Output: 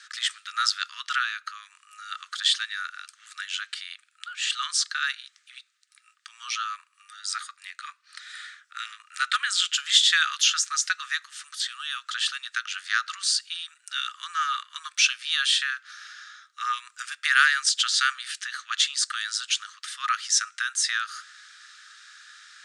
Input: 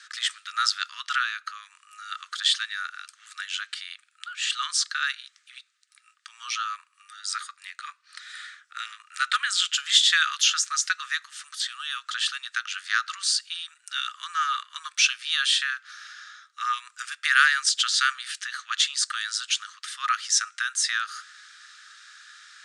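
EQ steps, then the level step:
high-pass filter 880 Hz 12 dB per octave
0.0 dB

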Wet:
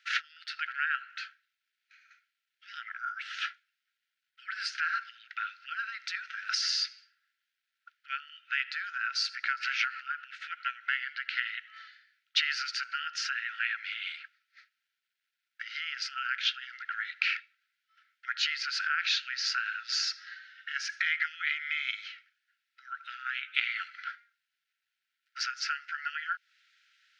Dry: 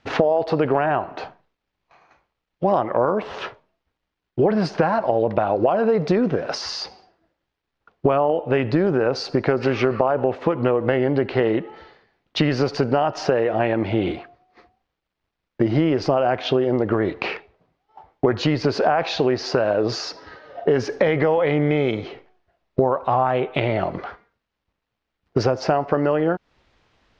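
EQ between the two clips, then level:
linear-phase brick-wall high-pass 1,300 Hz
0.0 dB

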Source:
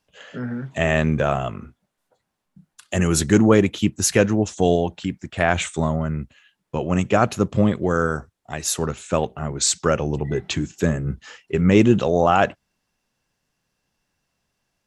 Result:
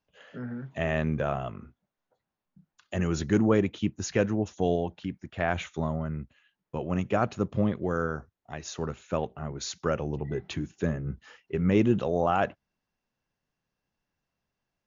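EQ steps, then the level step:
linear-phase brick-wall low-pass 7,100 Hz
high-shelf EQ 3,600 Hz −8.5 dB
−8.0 dB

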